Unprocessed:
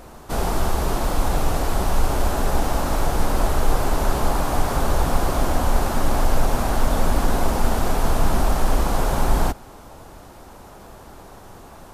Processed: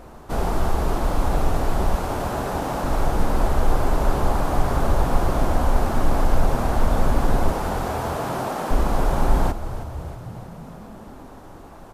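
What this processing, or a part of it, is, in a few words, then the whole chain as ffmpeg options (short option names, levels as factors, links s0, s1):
behind a face mask: -filter_complex "[0:a]asettb=1/sr,asplit=3[s0][s1][s2];[s0]atrim=end=1.954[s3];[s1]atrim=start=1.95:end=2.84,asetpts=PTS-STARTPTS,afade=t=in:d=0.004:c=qsin,afade=t=out:st=0.886:d=0.004:c=qsin,highpass=f=180:p=1[s4];[s2]atrim=start=2.836[s5];[s3][s4]acrossfade=d=0.004:c1=hsin:c2=qsin[s6];[s6][s5]acrossfade=d=0.004:c1=qsin:c2=hsin,asettb=1/sr,asplit=3[s7][s8][s9];[s7]atrim=end=7.524[s10];[s8]atrim=start=7.52:end=8.71,asetpts=PTS-STARTPTS,afade=t=in:d=0.004:c=qsin,afade=t=out:st=1.186:d=0.004:c=qsin,highpass=320[s11];[s9]atrim=start=8.706[s12];[s10][s11]acrossfade=d=0.004:c1=hsin:c2=qsin[s13];[s13][s12]acrossfade=d=0.004:c1=qsin:c2=hsin,asplit=8[s14][s15][s16][s17][s18][s19][s20][s21];[s15]adelay=317,afreqshift=-47,volume=0.224[s22];[s16]adelay=634,afreqshift=-94,volume=0.143[s23];[s17]adelay=951,afreqshift=-141,volume=0.0912[s24];[s18]adelay=1268,afreqshift=-188,volume=0.0589[s25];[s19]adelay=1585,afreqshift=-235,volume=0.0376[s26];[s20]adelay=1902,afreqshift=-282,volume=0.024[s27];[s21]adelay=2219,afreqshift=-329,volume=0.0153[s28];[s14][s22][s23][s24][s25][s26][s27][s28]amix=inputs=8:normalize=0,highshelf=f=2600:g=-8"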